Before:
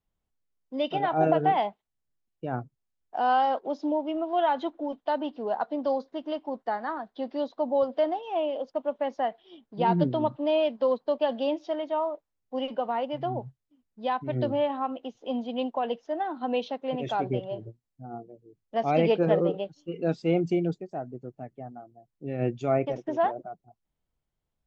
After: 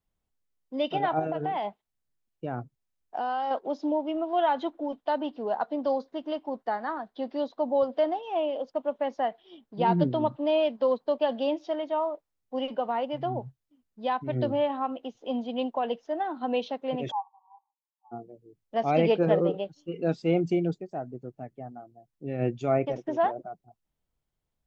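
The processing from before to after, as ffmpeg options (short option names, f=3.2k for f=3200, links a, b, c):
-filter_complex "[0:a]asettb=1/sr,asplit=3[a][b][c];[a]atrim=end=1.194[d];[b]atrim=start=1.19:end=3.51,asetpts=PTS-STARTPTS,afade=t=in:d=0.004:c=qsin,afade=t=out:st=2.316:d=0.004:c=qsin,acompressor=threshold=-26dB:ratio=6:attack=3.2:release=140:knee=1:detection=peak[e];[c]atrim=start=3.506[f];[d][e]acrossfade=d=0.004:c1=hsin:c2=qsin[g];[g][f]acrossfade=d=0.004:c1=qsin:c2=hsin,asplit=3[h][i][j];[h]afade=t=out:st=17.1:d=0.02[k];[i]asuperpass=centerf=950:order=20:qfactor=2.7,afade=t=in:st=17.1:d=0.02,afade=t=out:st=18.11:d=0.02[l];[j]afade=t=in:st=18.11:d=0.02[m];[k][l][m]amix=inputs=3:normalize=0"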